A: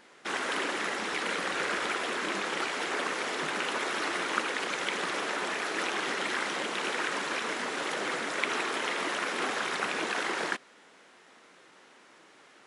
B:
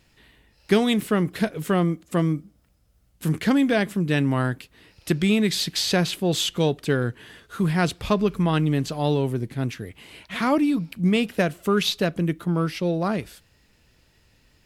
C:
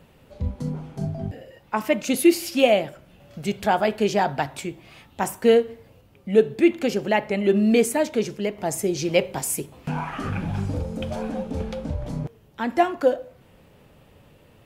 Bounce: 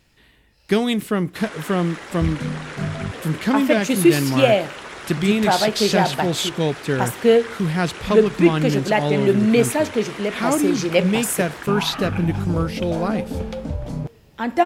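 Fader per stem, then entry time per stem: -4.0, +0.5, +2.0 dB; 1.10, 0.00, 1.80 s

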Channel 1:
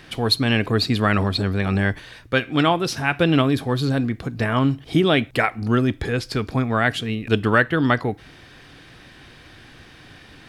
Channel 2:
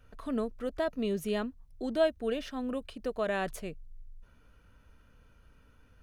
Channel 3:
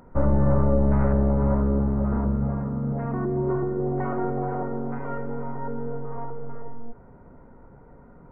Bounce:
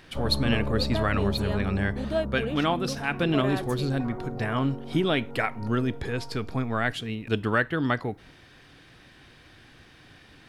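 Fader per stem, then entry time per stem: -7.0, -1.0, -10.0 dB; 0.00, 0.15, 0.00 s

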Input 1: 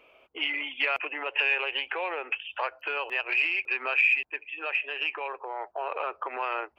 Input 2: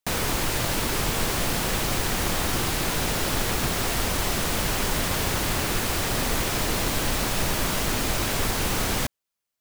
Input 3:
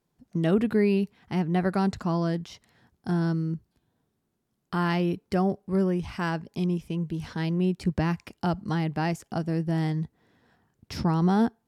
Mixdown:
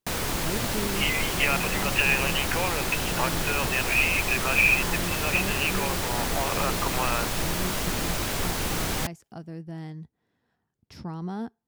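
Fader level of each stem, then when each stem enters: +2.0, -3.0, -11.0 dB; 0.60, 0.00, 0.00 s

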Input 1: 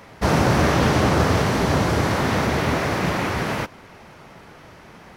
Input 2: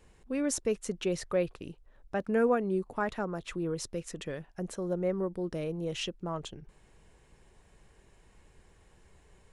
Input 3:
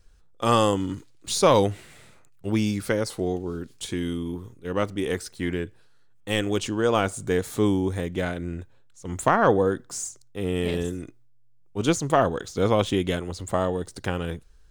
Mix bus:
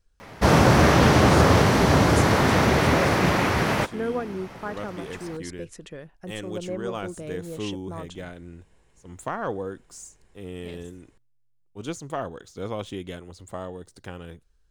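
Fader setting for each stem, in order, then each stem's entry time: +1.5, -2.0, -10.5 dB; 0.20, 1.65, 0.00 s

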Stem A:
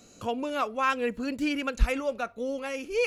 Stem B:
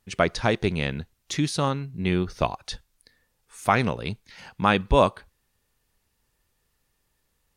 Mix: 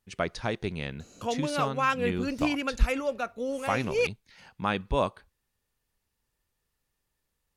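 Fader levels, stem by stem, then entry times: 0.0, -8.0 dB; 1.00, 0.00 s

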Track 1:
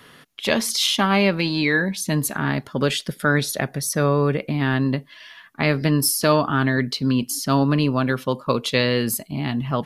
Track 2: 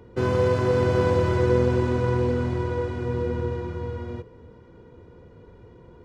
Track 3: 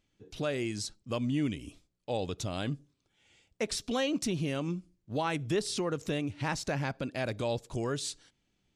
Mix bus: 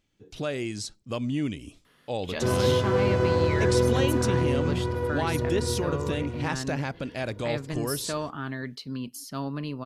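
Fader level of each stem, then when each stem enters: -14.0, -2.0, +2.0 dB; 1.85, 2.25, 0.00 s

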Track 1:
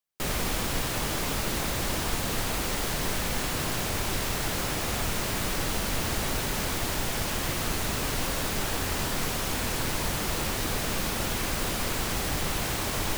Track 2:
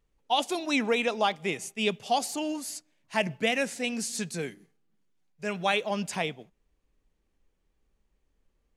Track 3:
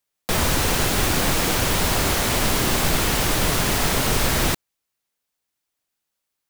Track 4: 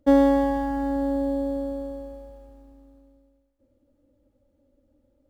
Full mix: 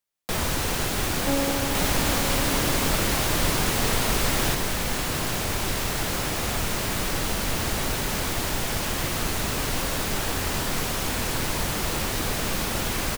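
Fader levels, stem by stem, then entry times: +2.5 dB, off, -5.5 dB, -9.5 dB; 1.55 s, off, 0.00 s, 1.20 s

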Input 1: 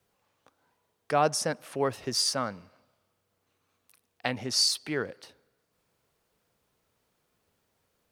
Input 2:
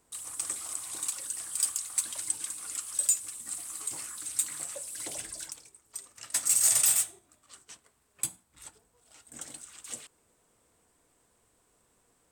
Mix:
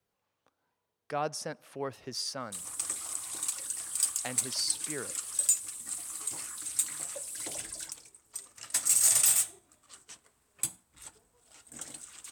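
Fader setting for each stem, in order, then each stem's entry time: -8.5, 0.0 dB; 0.00, 2.40 s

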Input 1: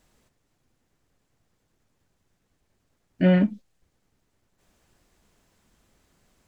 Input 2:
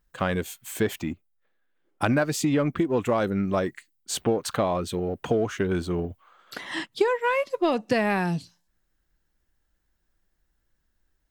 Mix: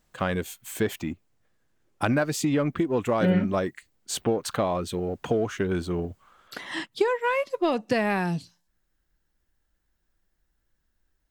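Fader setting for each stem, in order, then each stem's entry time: -4.5, -1.0 dB; 0.00, 0.00 s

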